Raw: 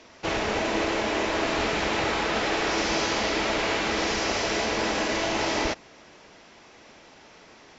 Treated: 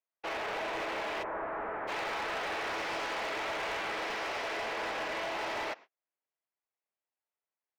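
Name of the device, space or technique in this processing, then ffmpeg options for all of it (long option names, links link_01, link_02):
walkie-talkie: -filter_complex "[0:a]highpass=560,lowpass=2600,asoftclip=type=hard:threshold=-28dB,agate=range=-42dB:threshold=-45dB:ratio=16:detection=peak,asplit=3[link_01][link_02][link_03];[link_01]afade=type=out:start_time=1.22:duration=0.02[link_04];[link_02]lowpass=frequency=1600:width=0.5412,lowpass=frequency=1600:width=1.3066,afade=type=in:start_time=1.22:duration=0.02,afade=type=out:start_time=1.87:duration=0.02[link_05];[link_03]afade=type=in:start_time=1.87:duration=0.02[link_06];[link_04][link_05][link_06]amix=inputs=3:normalize=0,volume=-4dB"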